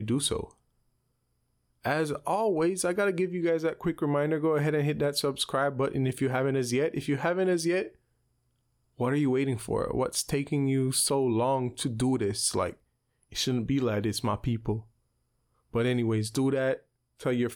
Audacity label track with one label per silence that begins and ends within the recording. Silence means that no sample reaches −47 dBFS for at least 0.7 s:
0.510000	1.840000	silence
7.890000	8.990000	silence
14.820000	15.740000	silence